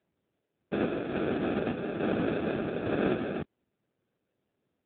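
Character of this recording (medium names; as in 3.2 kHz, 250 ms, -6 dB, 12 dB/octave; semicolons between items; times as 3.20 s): aliases and images of a low sample rate 1 kHz, jitter 0%; random-step tremolo; AMR-NB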